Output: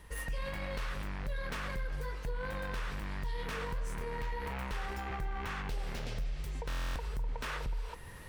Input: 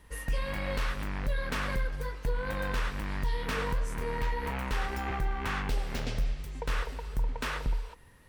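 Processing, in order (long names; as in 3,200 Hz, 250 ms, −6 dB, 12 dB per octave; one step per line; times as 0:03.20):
stylus tracing distortion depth 0.049 ms
parametric band 260 Hz −7 dB 0.25 octaves
in parallel at −2.5 dB: downward compressor, threshold −36 dBFS, peak gain reduction 11 dB
on the sum: brickwall limiter −26.5 dBFS, peak gain reduction 7 dB
reversed playback
upward compression, threshold −36 dBFS
reversed playback
buffer that repeats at 0:06.68, samples 1,024, times 11
level −3 dB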